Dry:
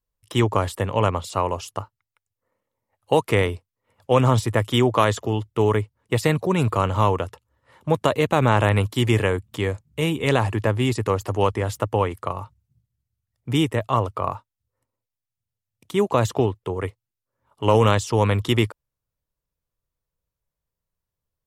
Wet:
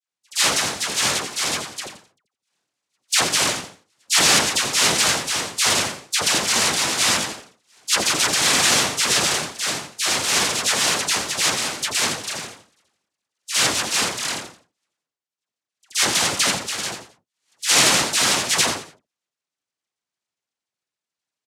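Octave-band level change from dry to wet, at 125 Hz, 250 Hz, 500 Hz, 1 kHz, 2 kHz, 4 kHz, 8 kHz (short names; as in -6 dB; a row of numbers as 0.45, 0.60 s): -15.5, -7.5, -8.5, -1.5, +8.0, +13.5, +21.0 dB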